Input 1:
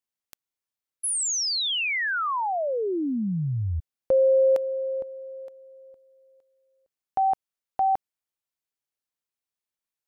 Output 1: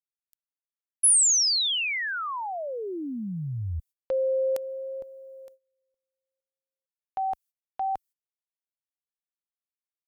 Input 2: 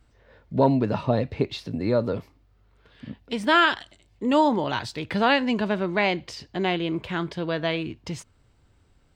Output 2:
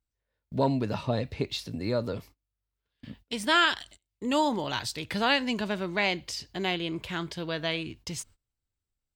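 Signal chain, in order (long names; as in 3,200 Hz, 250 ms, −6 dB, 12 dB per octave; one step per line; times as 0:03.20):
first-order pre-emphasis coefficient 0.8
noise gate −58 dBFS, range −25 dB
low-shelf EQ 61 Hz +10.5 dB
pitch vibrato 0.64 Hz 11 cents
level +7 dB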